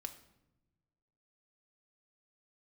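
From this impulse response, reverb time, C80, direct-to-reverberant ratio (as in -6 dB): 1.0 s, 15.5 dB, 5.0 dB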